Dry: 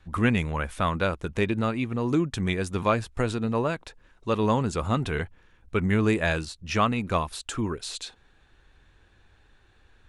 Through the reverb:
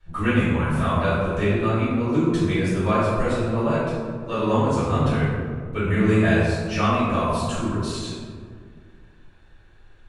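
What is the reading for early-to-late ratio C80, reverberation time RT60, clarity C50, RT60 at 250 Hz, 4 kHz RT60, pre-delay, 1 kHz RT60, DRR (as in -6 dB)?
0.5 dB, 2.0 s, -2.5 dB, 2.3 s, 0.85 s, 3 ms, 1.8 s, -13.0 dB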